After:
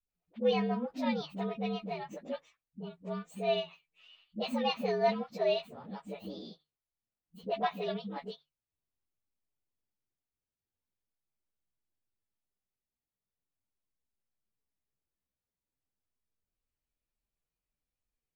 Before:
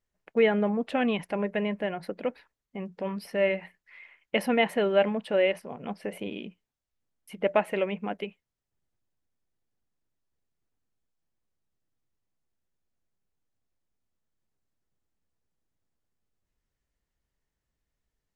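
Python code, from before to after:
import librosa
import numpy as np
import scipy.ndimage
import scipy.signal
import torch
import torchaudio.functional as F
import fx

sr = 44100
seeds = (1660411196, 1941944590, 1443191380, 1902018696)

y = fx.partial_stretch(x, sr, pct=115)
y = fx.hum_notches(y, sr, base_hz=50, count=3)
y = fx.dispersion(y, sr, late='highs', ms=89.0, hz=360.0)
y = y * 10.0 ** (-4.5 / 20.0)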